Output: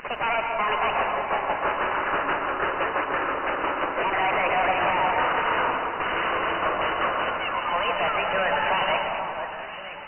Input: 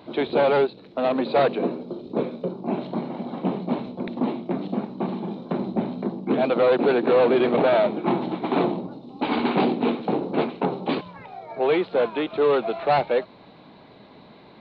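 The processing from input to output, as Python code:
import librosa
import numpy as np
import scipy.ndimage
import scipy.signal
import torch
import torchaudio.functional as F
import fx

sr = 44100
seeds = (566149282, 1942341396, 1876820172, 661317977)

p1 = fx.speed_glide(x, sr, from_pct=166, to_pct=124)
p2 = fx.highpass(p1, sr, hz=820.0, slope=6)
p3 = np.diff(p2, prepend=0.0)
p4 = fx.over_compress(p3, sr, threshold_db=-45.0, ratio=-1.0)
p5 = p3 + F.gain(torch.from_numpy(p4), -2.5).numpy()
p6 = fx.fuzz(p5, sr, gain_db=47.0, gate_db=-54.0)
p7 = fx.vibrato(p6, sr, rate_hz=3.6, depth_cents=9.7)
p8 = fx.brickwall_lowpass(p7, sr, high_hz=3000.0)
p9 = fx.echo_alternate(p8, sr, ms=482, hz=1300.0, feedback_pct=60, wet_db=-7.0)
p10 = fx.rev_plate(p9, sr, seeds[0], rt60_s=1.6, hf_ratio=0.5, predelay_ms=100, drr_db=3.0)
y = F.gain(torch.from_numpy(p10), -8.5).numpy()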